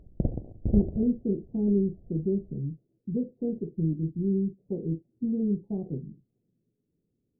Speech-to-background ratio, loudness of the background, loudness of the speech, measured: 3.0 dB, -33.0 LUFS, -30.0 LUFS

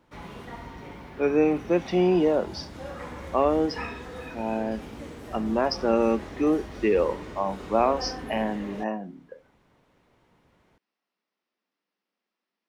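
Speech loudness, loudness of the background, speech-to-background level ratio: -26.0 LUFS, -39.5 LUFS, 13.5 dB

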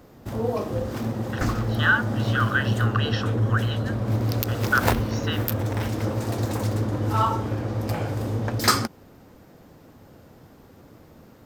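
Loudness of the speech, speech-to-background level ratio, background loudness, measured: -27.0 LUFS, -1.5 dB, -25.5 LUFS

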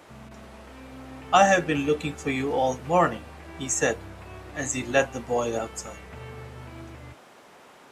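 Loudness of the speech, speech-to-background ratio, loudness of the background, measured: -25.0 LUFS, 19.0 dB, -44.0 LUFS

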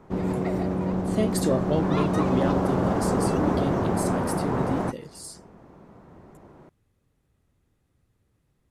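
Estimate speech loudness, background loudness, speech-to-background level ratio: -30.0 LUFS, -25.5 LUFS, -4.5 dB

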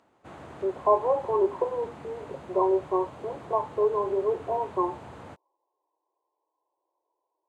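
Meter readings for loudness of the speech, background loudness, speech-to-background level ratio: -27.5 LUFS, -45.0 LUFS, 17.5 dB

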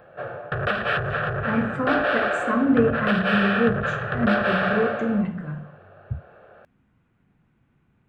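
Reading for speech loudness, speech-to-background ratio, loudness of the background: -25.0 LUFS, 0.0 dB, -25.0 LUFS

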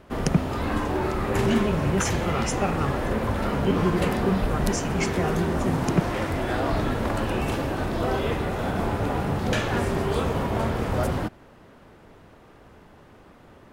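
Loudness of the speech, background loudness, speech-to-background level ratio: -28.5 LUFS, -26.5 LUFS, -2.0 dB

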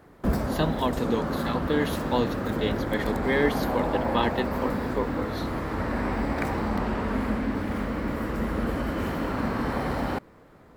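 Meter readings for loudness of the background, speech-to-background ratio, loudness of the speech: -29.0 LUFS, -0.5 dB, -29.5 LUFS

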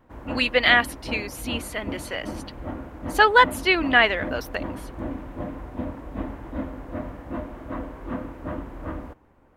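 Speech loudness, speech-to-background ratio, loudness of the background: -20.5 LUFS, 14.5 dB, -35.0 LUFS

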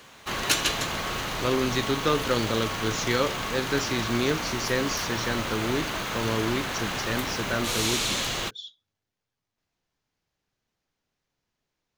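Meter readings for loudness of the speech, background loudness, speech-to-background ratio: -29.0 LUFS, -28.5 LUFS, -0.5 dB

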